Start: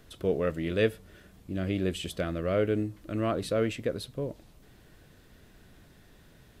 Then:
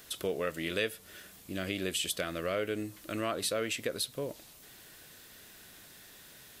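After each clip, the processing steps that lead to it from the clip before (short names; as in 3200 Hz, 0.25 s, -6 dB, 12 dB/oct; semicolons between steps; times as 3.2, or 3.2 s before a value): tilt +3.5 dB/oct; compressor 2.5:1, threshold -34 dBFS, peak gain reduction 9 dB; gain +3 dB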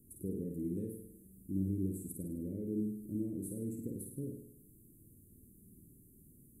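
inverse Chebyshev band-stop 720–5300 Hz, stop band 50 dB; air absorption 50 m; flutter echo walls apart 8.9 m, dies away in 0.71 s; gain +2 dB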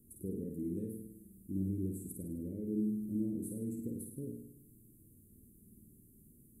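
reverb RT60 0.70 s, pre-delay 4 ms, DRR 15.5 dB; gain -1 dB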